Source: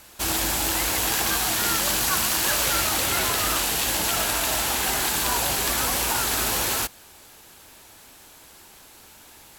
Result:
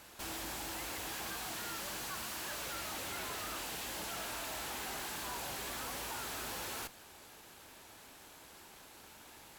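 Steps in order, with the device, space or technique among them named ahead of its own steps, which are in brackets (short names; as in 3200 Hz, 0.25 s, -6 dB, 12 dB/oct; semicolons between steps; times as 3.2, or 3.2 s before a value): tube preamp driven hard (tube stage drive 36 dB, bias 0.55; low shelf 85 Hz -6 dB; high shelf 4100 Hz -6 dB); gain -1.5 dB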